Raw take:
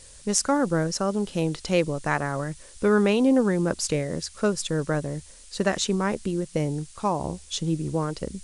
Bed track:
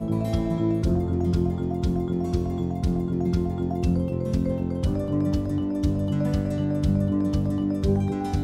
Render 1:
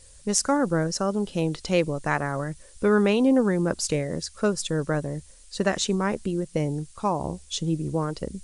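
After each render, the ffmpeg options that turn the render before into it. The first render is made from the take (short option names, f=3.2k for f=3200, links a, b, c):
-af "afftdn=nr=6:nf=-48"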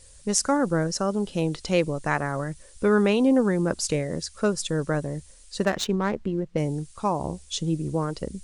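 -filter_complex "[0:a]asettb=1/sr,asplit=3[a][b][c];[a]atrim=end=5.654[d];[b]atrim=start=5.65:end=6.58,asetpts=PTS-STARTPTS,afade=t=in:d=0.004:c=qsin,afade=t=out:st=0.926:d=0.004:c=qsin,adynamicsmooth=sensitivity=3.5:basefreq=2k[e];[c]atrim=start=6.576[f];[d][e]acrossfade=d=0.004:c1=hsin:c2=qsin[g];[g][f]acrossfade=d=0.004:c1=qsin:c2=hsin"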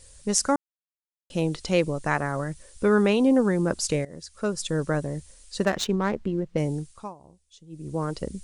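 -filter_complex "[0:a]asplit=6[a][b][c][d][e][f];[a]atrim=end=0.56,asetpts=PTS-STARTPTS,afade=t=out:st=0.556:d=0.004:c=hsin[g];[b]atrim=start=0.56:end=1.3,asetpts=PTS-STARTPTS,volume=0[h];[c]atrim=start=1.3:end=4.05,asetpts=PTS-STARTPTS,afade=t=in:d=0.004:c=hsin,afade=t=out:st=2.746:d=0.004:c=hsin:silence=0.149624[i];[d]atrim=start=4.05:end=7.15,asetpts=PTS-STARTPTS,afade=t=in:d=0.71:silence=0.149624,afade=t=out:st=2.7:d=0.4:silence=0.0749894[j];[e]atrim=start=7.15:end=7.69,asetpts=PTS-STARTPTS,volume=-22.5dB[k];[f]atrim=start=7.69,asetpts=PTS-STARTPTS,afade=t=in:d=0.4:silence=0.0749894[l];[g][h][i][j][k][l]concat=n=6:v=0:a=1"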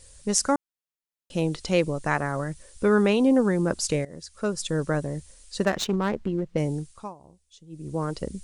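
-filter_complex "[0:a]asettb=1/sr,asplit=3[a][b][c];[a]atrim=end=5.724[d];[b]atrim=start=5.72:end=6.42,asetpts=PTS-STARTPTS,afade=t=in:d=0.004:c=qsin,afade=t=out:st=0.696:d=0.004:c=qsin,aeval=exprs='clip(val(0),-1,0.0944)':c=same[e];[c]atrim=start=6.416[f];[d][e]acrossfade=d=0.004:c1=hsin:c2=qsin[g];[g][f]acrossfade=d=0.004:c1=qsin:c2=hsin"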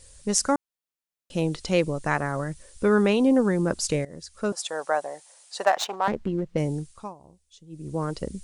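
-filter_complex "[0:a]asettb=1/sr,asplit=3[a][b][c];[a]atrim=end=4.524[d];[b]atrim=start=4.52:end=6.08,asetpts=PTS-STARTPTS,afade=t=in:d=0.004:c=qsin,afade=t=out:st=1.556:d=0.004:c=qsin,highpass=f=750:t=q:w=3.7[e];[c]atrim=start=6.076[f];[d][e]acrossfade=d=0.004:c1=hsin:c2=qsin[g];[g][f]acrossfade=d=0.004:c1=qsin:c2=hsin"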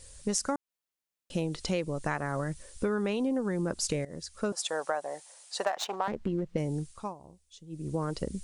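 -af "acompressor=threshold=-27dB:ratio=6"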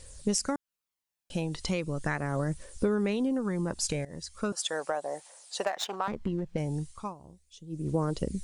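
-af "aphaser=in_gain=1:out_gain=1:delay=1.3:decay=0.36:speed=0.38:type=triangular"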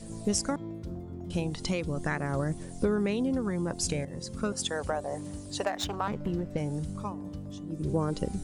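-filter_complex "[1:a]volume=-16dB[a];[0:a][a]amix=inputs=2:normalize=0"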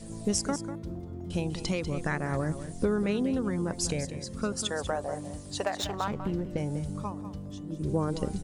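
-af "aecho=1:1:195:0.266"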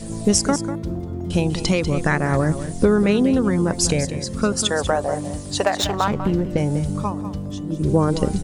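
-af "volume=11dB,alimiter=limit=-1dB:level=0:latency=1"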